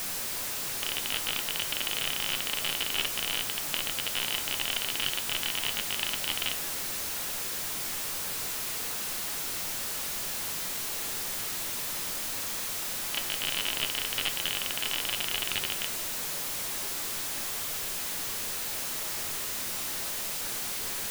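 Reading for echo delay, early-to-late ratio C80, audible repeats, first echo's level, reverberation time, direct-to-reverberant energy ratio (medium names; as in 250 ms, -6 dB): no echo, 19.5 dB, no echo, no echo, 0.55 s, 8.0 dB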